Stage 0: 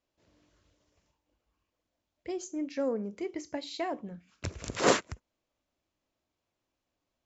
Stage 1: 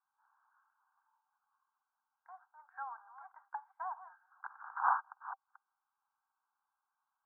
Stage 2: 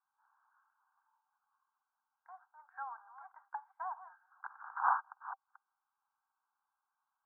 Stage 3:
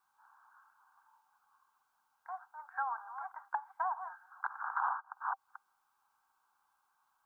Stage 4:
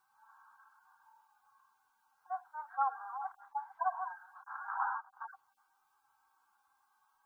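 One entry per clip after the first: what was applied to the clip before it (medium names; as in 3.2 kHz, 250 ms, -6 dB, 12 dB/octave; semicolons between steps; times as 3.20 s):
chunks repeated in reverse 232 ms, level -14 dB; Chebyshev band-pass 780–1600 Hz, order 5; low-pass that closes with the level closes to 1 kHz, closed at -43 dBFS; trim +6 dB
no audible change
compression 16:1, threshold -41 dBFS, peak gain reduction 17 dB; trim +10.5 dB
harmonic-percussive separation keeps harmonic; trim +5.5 dB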